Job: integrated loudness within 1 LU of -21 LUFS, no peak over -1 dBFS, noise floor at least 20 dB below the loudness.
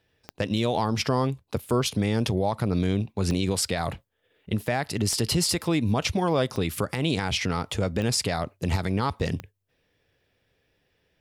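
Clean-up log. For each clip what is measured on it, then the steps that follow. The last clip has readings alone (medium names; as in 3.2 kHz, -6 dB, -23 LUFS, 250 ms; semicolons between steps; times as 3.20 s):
clicks found 6; loudness -26.5 LUFS; peak level -14.0 dBFS; loudness target -21.0 LUFS
-> de-click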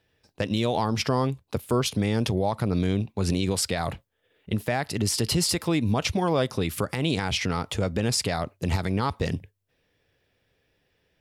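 clicks found 0; loudness -26.5 LUFS; peak level -14.0 dBFS; loudness target -21.0 LUFS
-> trim +5.5 dB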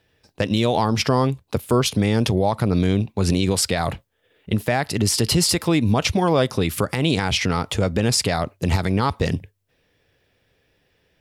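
loudness -21.0 LUFS; peak level -8.5 dBFS; noise floor -67 dBFS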